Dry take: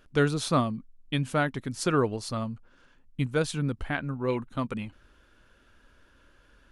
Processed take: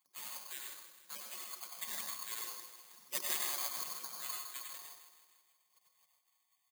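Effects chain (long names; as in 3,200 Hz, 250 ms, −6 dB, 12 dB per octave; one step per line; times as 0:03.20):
source passing by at 0:02.90, 9 m/s, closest 5.6 metres
gate on every frequency bin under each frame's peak −30 dB weak
high-pass filter 140 Hz 24 dB per octave
comb filter 5.5 ms, depth 31%
hollow resonant body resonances 1,100/3,600 Hz, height 13 dB, ringing for 45 ms
phase shifter 0.52 Hz, delay 4.6 ms, feedback 28%
repeating echo 159 ms, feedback 57%, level −11.5 dB
convolution reverb RT60 0.50 s, pre-delay 82 ms, DRR 1.5 dB
bad sample-rate conversion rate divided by 8×, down filtered, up zero stuff
level +5 dB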